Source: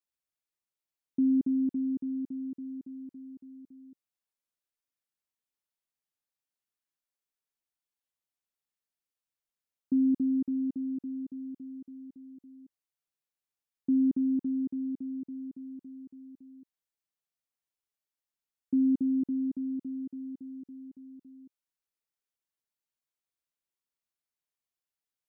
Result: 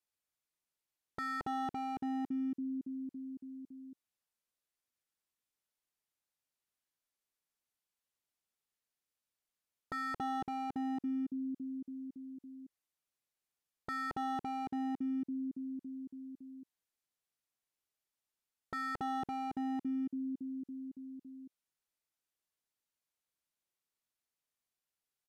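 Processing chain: wavefolder -33 dBFS; resampled via 32 kHz; trim +1 dB

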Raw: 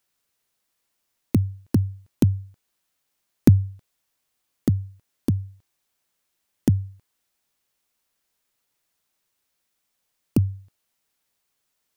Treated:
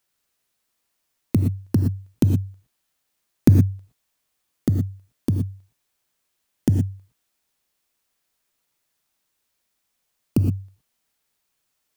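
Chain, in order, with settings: gated-style reverb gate 140 ms rising, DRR 5.5 dB

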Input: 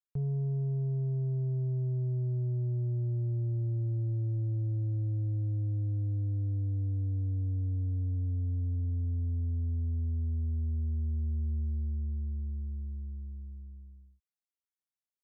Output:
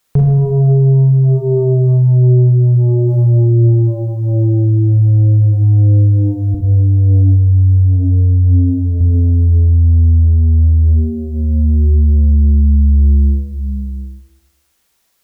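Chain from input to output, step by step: hum notches 60/120/180/240/300 Hz; compression, threshold -34 dBFS, peak gain reduction 4.5 dB; 6.54–9.01 s: flange 1.4 Hz, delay 6.9 ms, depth 3.3 ms, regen +18%; Schroeder reverb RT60 1.1 s, combs from 33 ms, DRR -1.5 dB; loudness maximiser +34 dB; trim -4.5 dB

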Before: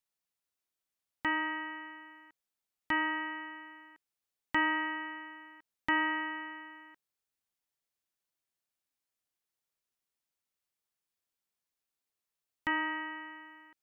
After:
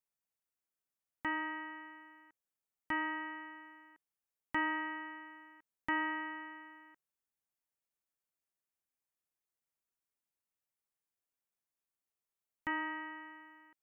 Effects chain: peaking EQ 4 kHz -8.5 dB 1 oct; trim -4 dB

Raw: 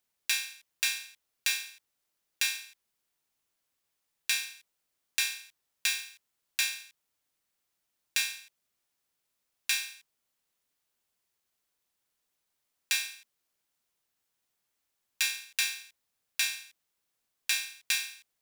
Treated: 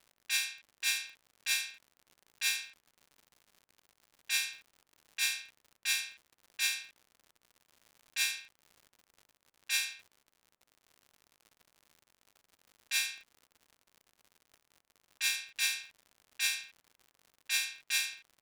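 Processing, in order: level-controlled noise filter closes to 1.3 kHz, open at -27 dBFS; transient shaper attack -11 dB, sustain +1 dB; crackle 110 per s -49 dBFS; trim +2 dB

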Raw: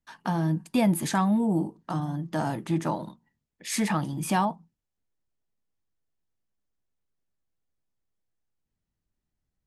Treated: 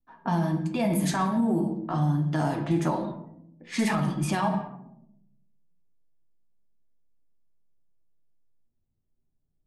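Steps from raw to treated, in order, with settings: reverberation RT60 0.85 s, pre-delay 3 ms, DRR 4 dB; peak limiter -18 dBFS, peak gain reduction 7.5 dB; flange 0.28 Hz, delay 3.7 ms, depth 5 ms, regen -42%; level-controlled noise filter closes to 650 Hz, open at -26 dBFS; trim +5 dB

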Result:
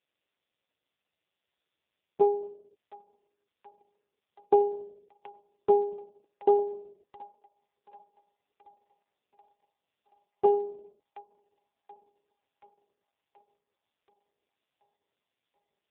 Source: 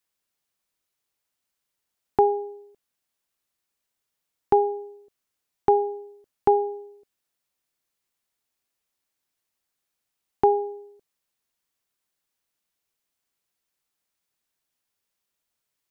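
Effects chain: static phaser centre 500 Hz, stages 4; feedback echo behind a high-pass 729 ms, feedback 58%, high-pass 1.8 kHz, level -5.5 dB; AMR-NB 4.75 kbps 8 kHz

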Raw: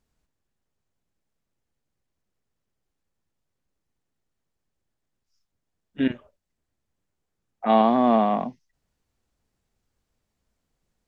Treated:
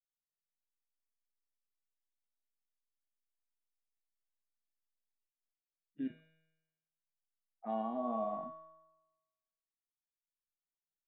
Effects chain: compression 2:1, threshold -22 dBFS, peak gain reduction 5.5 dB; feedback comb 160 Hz, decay 1.6 s, mix 90%; reverberation, pre-delay 45 ms, DRR 18.5 dB; spectral contrast expander 1.5:1; trim +2.5 dB

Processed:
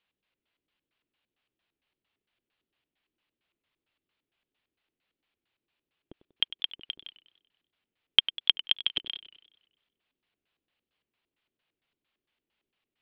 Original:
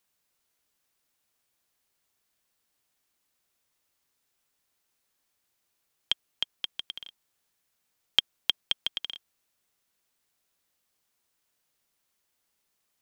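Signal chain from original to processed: Chebyshev low-pass 4.4 kHz, order 3; LFO low-pass square 4.4 Hz 350–2900 Hz; modulated delay 96 ms, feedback 53%, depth 113 cents, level -15 dB; trim -2 dB

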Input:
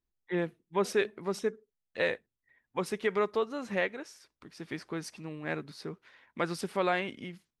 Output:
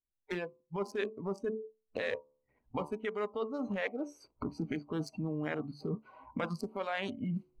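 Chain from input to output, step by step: local Wiener filter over 25 samples; recorder AGC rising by 53 dB/s; de-hum 73.06 Hz, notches 16; spectral noise reduction 18 dB; reverse; compression 6:1, threshold -38 dBFS, peak gain reduction 15 dB; reverse; trim +5 dB

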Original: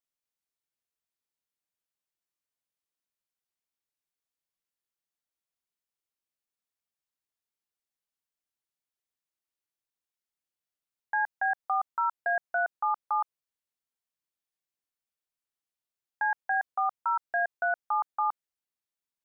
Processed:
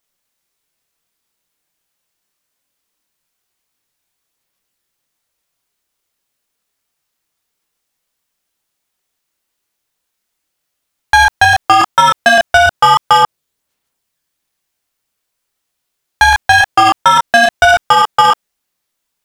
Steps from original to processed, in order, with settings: waveshaping leveller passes 3; chorus voices 4, 0.82 Hz, delay 28 ms, depth 3.8 ms; loudness maximiser +29 dB; trim -1 dB

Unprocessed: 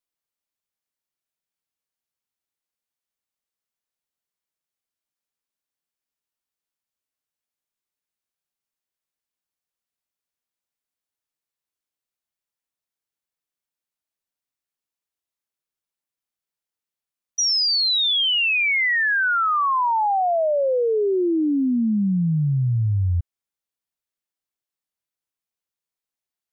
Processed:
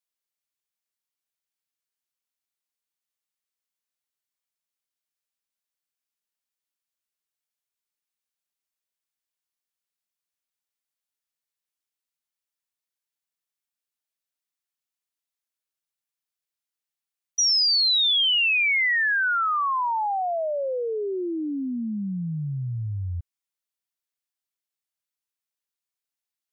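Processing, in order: tilt shelf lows -4.5 dB; trim -4.5 dB

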